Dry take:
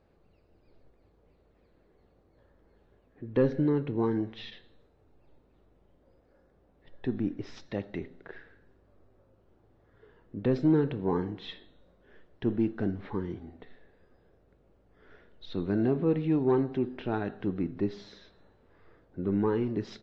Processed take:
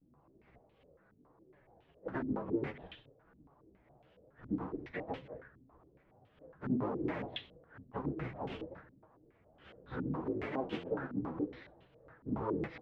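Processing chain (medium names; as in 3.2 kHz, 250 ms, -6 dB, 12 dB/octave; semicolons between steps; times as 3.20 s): cycle switcher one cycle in 3, inverted; high-pass 44 Hz 12 dB/octave; de-hum 83.85 Hz, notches 6; compression 12:1, threshold -33 dBFS, peak gain reduction 13.5 dB; vibrato 0.38 Hz 63 cents; plain phase-vocoder stretch 0.64×; chorus voices 6, 0.59 Hz, delay 11 ms, depth 4.9 ms; step-sequenced low-pass 7.2 Hz 260–3000 Hz; trim +3 dB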